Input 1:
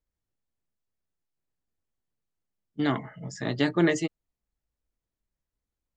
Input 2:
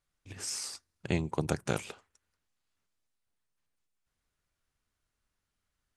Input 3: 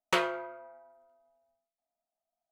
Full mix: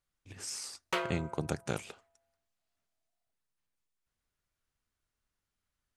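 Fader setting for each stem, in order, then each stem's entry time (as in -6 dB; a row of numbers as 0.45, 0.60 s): off, -3.5 dB, -5.5 dB; off, 0.00 s, 0.80 s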